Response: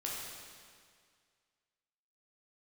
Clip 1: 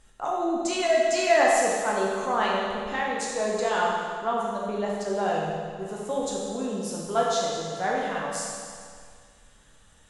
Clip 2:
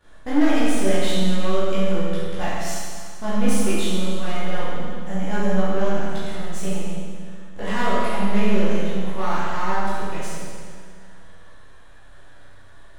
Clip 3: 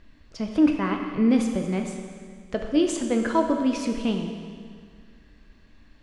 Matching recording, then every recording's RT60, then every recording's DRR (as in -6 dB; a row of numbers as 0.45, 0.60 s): 1; 2.0, 2.0, 2.0 s; -4.5, -11.5, 3.0 dB